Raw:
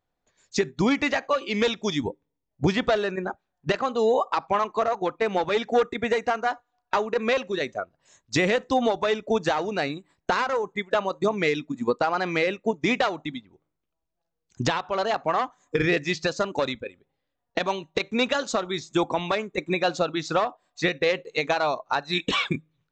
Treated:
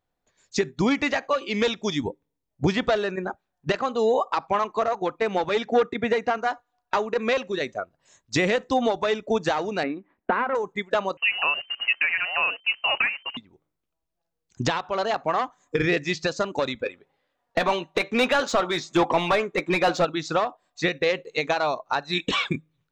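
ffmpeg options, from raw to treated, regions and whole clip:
-filter_complex "[0:a]asettb=1/sr,asplit=3[a][b][c];[a]atrim=end=5.664[d];[b]atrim=start=5.66:end=6.38,asetpts=PTS-STARTPTS,afade=t=in:d=0.004:c=qsin,afade=t=out:st=0.716:d=0.004:c=qsin,highpass=120,lowpass=5.4k,lowshelf=f=160:g=8.5[e];[c]atrim=start=6.376[f];[d][e]acrossfade=d=0.004:c1=hsin:c2=qsin[g];[g][f]acrossfade=d=0.004:c1=qsin:c2=hsin,asettb=1/sr,asplit=3[h][i][j];[h]atrim=end=9.834[k];[i]atrim=start=9.83:end=10.55,asetpts=PTS-STARTPTS,afade=t=in:d=0.004:c=qsin,afade=t=out:st=0.716:d=0.004:c=qsin,lowpass=f=2.3k:w=0.5412,lowpass=f=2.3k:w=1.3066,lowshelf=f=180:t=q:w=3:g=-6[l];[j]atrim=start=10.546[m];[k][l]acrossfade=d=0.004:c1=hsin:c2=qsin[n];[n][m]acrossfade=d=0.004:c1=qsin:c2=hsin,asettb=1/sr,asplit=3[o][p][q];[o]atrim=end=11.174[r];[p]atrim=start=11.17:end=13.37,asetpts=PTS-STARTPTS,afade=t=in:d=0.004:c=qsin,afade=t=out:st=2.196:d=0.004:c=qsin,highpass=180,acrusher=bits=7:dc=4:mix=0:aa=0.000001,lowpass=f=2.6k:t=q:w=0.5098,lowpass=f=2.6k:t=q:w=0.6013,lowpass=f=2.6k:t=q:w=0.9,lowpass=f=2.6k:t=q:w=2.563,afreqshift=-3100[s];[q]atrim=start=13.366[t];[r][s]acrossfade=d=0.004:c1=hsin:c2=qsin[u];[u][t]acrossfade=d=0.004:c1=qsin:c2=hsin,asettb=1/sr,asplit=3[v][w][x];[v]atrim=end=16.794[y];[w]atrim=start=16.79:end=20.05,asetpts=PTS-STARTPTS,afade=t=in:d=0.004:c=qsin,afade=t=out:st=3.256:d=0.004:c=qsin,asplit=2[z][aa];[aa]highpass=f=720:p=1,volume=18dB,asoftclip=type=tanh:threshold=-12dB[ab];[z][ab]amix=inputs=2:normalize=0,lowpass=f=2k:p=1,volume=-6dB,asplit=2[ac][ad];[ad]adelay=12,volume=-12dB[ae];[ac][ae]amix=inputs=2:normalize=0,atrim=end_sample=143766[af];[x]atrim=start=20.046[ag];[y][af]acrossfade=d=0.004:c1=hsin:c2=qsin[ah];[ah][ag]acrossfade=d=0.004:c1=qsin:c2=hsin"

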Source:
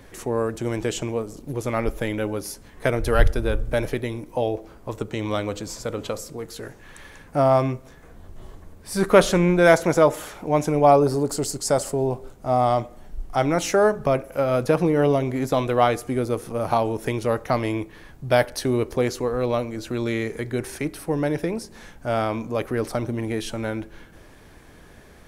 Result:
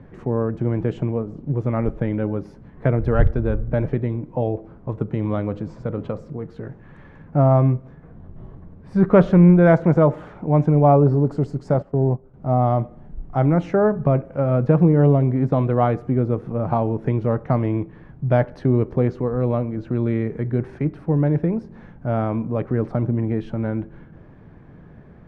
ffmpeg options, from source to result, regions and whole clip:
-filter_complex "[0:a]asettb=1/sr,asplit=3[a][b][c];[a]atrim=end=11.744[d];[b]atrim=start=11.74:end=12.34,asetpts=PTS-STARTPTS,afade=t=in:d=0.004:c=qsin,afade=t=out:st=0.596:d=0.004:c=qsin,adynamicsmooth=sensitivity=2.5:basefreq=3.1k,agate=range=-11dB:threshold=-30dB:ratio=16:release=100:detection=peak[e];[c]atrim=start=12.336[f];[d][e]acrossfade=d=0.004:c1=hsin:c2=qsin[g];[g][f]acrossfade=d=0.004:c1=qsin:c2=hsin,lowpass=1.5k,equalizer=f=150:t=o:w=1.5:g=13,volume=-2dB"

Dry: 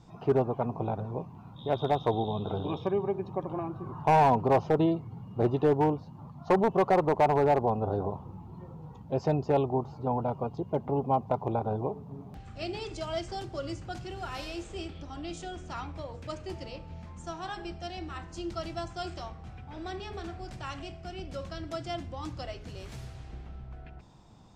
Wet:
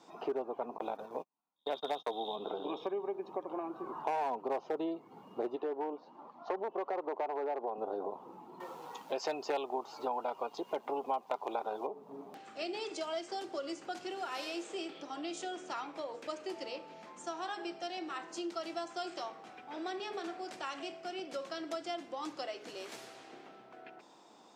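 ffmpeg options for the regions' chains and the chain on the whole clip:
-filter_complex "[0:a]asettb=1/sr,asplit=3[a][b][c];[a]atrim=end=0.784[d];[b]atrim=start=0.78:end=2.36,asetpts=PTS-STARTPTS,afade=t=in:d=0.004:c=qsin,afade=t=out:st=1.576:d=0.004:c=qsin,bandreject=f=370:w=5.2,agate=range=-41dB:threshold=-37dB:ratio=16:release=100:detection=peak,highshelf=f=2.7k:g=11.5[e];[c]atrim=start=2.356[f];[d][e]acrossfade=d=0.004:c1=hsin:c2=qsin[g];[g][f]acrossfade=d=0.004:c1=qsin:c2=hsin,asettb=1/sr,asplit=3[h][i][j];[h]atrim=end=5.564[k];[i]atrim=start=5.56:end=7.78,asetpts=PTS-STARTPTS,afade=t=in:d=0.004:c=qsin,afade=t=out:st=2.216:d=0.004:c=qsin,highshelf=f=4.5k:g=-8.5,acompressor=threshold=-26dB:ratio=2:attack=3.2:release=140:knee=1:detection=peak,highpass=260,lowpass=6.1k[l];[j]atrim=start=7.776[m];[k][l]acrossfade=d=0.004:c1=hsin:c2=qsin[n];[n][m]acrossfade=d=0.004:c1=qsin:c2=hsin,asettb=1/sr,asplit=3[o][p][q];[o]atrim=end=8.604[r];[p]atrim=start=8.6:end=11.87,asetpts=PTS-STARTPTS,afade=t=in:d=0.004:c=qsin,afade=t=out:st=3.266:d=0.004:c=qsin,tiltshelf=f=940:g=-9,acontrast=74[s];[q]atrim=start=11.866[t];[r][s]acrossfade=d=0.004:c1=hsin:c2=qsin[u];[u][t]acrossfade=d=0.004:c1=qsin:c2=hsin,highpass=f=300:w=0.5412,highpass=f=300:w=1.3066,acompressor=threshold=-39dB:ratio=3,volume=2.5dB"

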